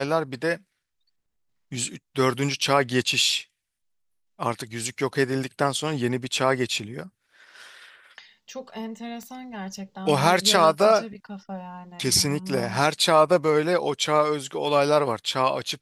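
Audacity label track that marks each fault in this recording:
9.230000	9.230000	pop -26 dBFS

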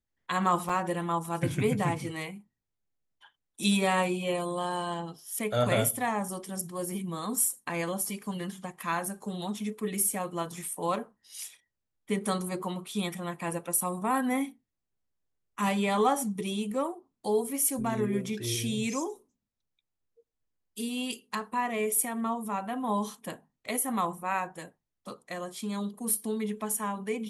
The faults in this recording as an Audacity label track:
0.690000	0.690000	gap 4.7 ms

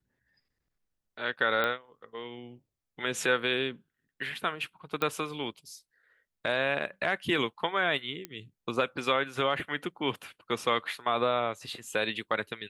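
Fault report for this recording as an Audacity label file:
1.640000	1.640000	pop -16 dBFS
5.020000	5.020000	pop -15 dBFS
8.250000	8.250000	pop -20 dBFS

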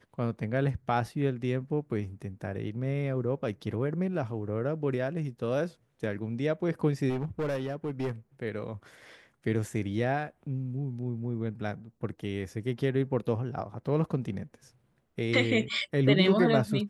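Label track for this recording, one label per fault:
7.090000	8.110000	clipped -27 dBFS

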